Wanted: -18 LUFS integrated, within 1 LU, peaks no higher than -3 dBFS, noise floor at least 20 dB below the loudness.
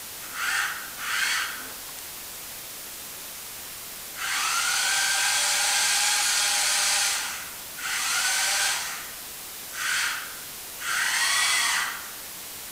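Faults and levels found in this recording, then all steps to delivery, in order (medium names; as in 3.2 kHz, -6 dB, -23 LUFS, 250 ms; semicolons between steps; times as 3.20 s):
noise floor -39 dBFS; noise floor target -44 dBFS; loudness -23.5 LUFS; peak level -10.5 dBFS; loudness target -18.0 LUFS
-> noise print and reduce 6 dB; trim +5.5 dB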